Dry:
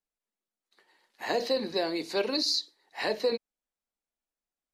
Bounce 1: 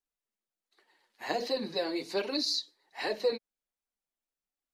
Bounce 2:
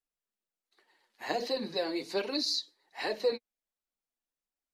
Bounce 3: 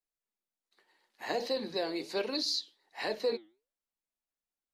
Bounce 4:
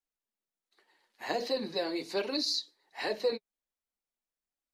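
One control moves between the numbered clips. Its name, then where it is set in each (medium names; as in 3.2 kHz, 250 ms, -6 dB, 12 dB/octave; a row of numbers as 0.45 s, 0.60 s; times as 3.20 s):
flange, regen: -3%, +21%, +86%, -25%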